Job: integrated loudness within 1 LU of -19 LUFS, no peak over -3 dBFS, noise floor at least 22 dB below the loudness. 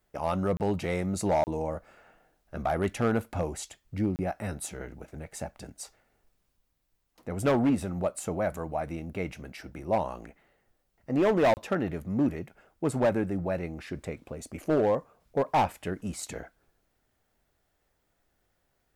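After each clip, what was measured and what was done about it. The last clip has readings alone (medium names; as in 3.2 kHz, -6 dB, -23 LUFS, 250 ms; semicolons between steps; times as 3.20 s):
clipped samples 0.9%; clipping level -19.0 dBFS; dropouts 4; longest dropout 29 ms; loudness -30.0 LUFS; peak level -19.0 dBFS; loudness target -19.0 LUFS
-> clip repair -19 dBFS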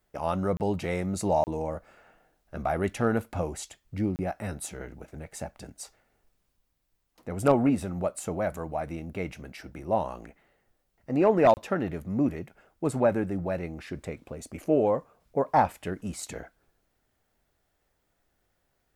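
clipped samples 0.0%; dropouts 4; longest dropout 29 ms
-> interpolate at 0.57/1.44/4.16/11.54 s, 29 ms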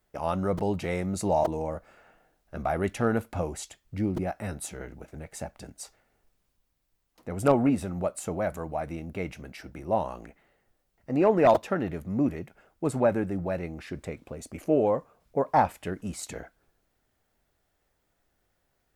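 dropouts 0; loudness -28.5 LUFS; peak level -10.0 dBFS; loudness target -19.0 LUFS
-> trim +9.5 dB; peak limiter -3 dBFS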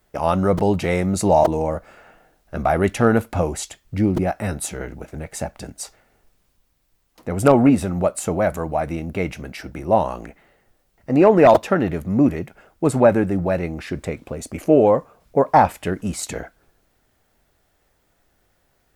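loudness -19.5 LUFS; peak level -3.0 dBFS; noise floor -66 dBFS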